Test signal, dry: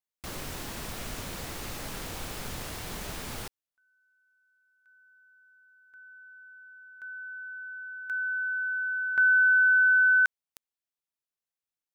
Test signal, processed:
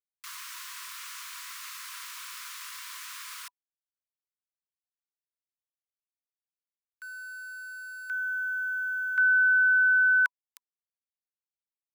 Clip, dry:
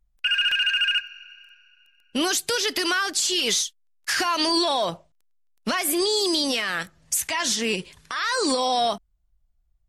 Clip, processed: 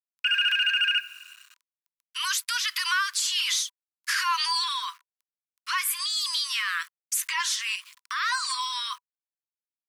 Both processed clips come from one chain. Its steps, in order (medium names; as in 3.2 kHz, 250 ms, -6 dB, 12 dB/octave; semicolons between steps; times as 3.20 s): small samples zeroed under -45.5 dBFS; dynamic bell 6.5 kHz, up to -4 dB, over -39 dBFS, Q 0.96; Chebyshev high-pass 980 Hz, order 10